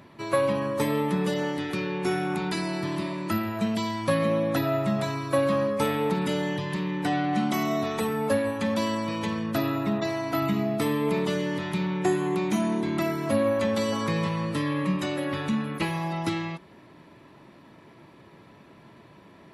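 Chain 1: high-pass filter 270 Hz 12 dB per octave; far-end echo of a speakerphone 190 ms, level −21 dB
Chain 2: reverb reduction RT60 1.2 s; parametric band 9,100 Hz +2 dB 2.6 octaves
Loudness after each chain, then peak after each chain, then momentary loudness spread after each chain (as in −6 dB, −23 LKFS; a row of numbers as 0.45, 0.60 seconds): −29.0, −30.0 LKFS; −12.5, −11.5 dBFS; 6, 6 LU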